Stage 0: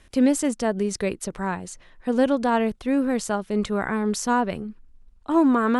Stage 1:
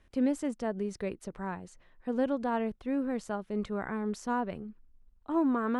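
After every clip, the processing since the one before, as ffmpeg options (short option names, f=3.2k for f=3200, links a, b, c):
-af "highshelf=f=3.5k:g=-11.5,volume=-9dB"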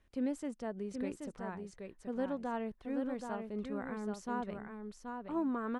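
-af "aecho=1:1:778:0.531,volume=-7dB"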